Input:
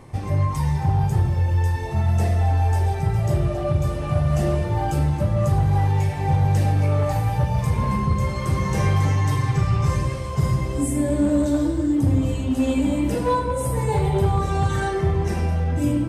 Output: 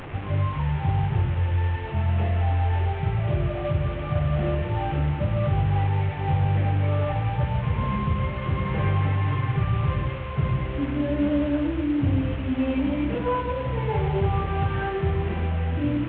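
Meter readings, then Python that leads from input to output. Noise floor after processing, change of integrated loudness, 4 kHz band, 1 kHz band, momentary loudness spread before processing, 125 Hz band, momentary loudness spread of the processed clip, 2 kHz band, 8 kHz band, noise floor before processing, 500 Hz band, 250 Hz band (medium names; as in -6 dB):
-30 dBFS, -3.5 dB, -2.5 dB, -3.5 dB, 3 LU, -3.5 dB, 3 LU, -0.5 dB, under -40 dB, -27 dBFS, -3.5 dB, -3.5 dB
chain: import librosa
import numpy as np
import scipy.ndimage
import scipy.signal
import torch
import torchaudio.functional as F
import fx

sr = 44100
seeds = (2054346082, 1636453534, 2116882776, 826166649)

y = fx.delta_mod(x, sr, bps=16000, step_db=-27.5)
y = y * 10.0 ** (-3.5 / 20.0)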